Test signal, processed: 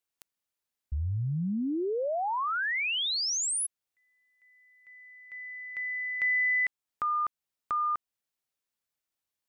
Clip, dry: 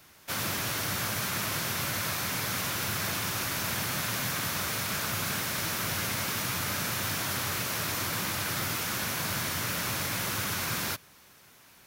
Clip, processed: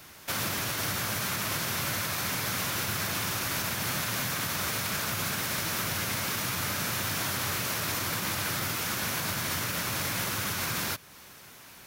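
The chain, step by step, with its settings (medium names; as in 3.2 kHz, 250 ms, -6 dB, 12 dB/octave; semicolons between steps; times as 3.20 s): in parallel at +1 dB: compression, threshold -42 dBFS; on the sum: peak limiter -21 dBFS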